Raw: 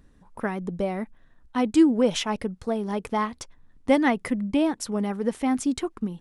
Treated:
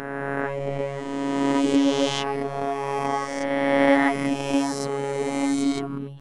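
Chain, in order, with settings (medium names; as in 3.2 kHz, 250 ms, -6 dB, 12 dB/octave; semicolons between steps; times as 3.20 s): reverse spectral sustain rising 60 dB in 2.79 s; treble shelf 5.5 kHz -9 dB; reverse; upward compressor, threshold -40 dBFS; reverse; robot voice 139 Hz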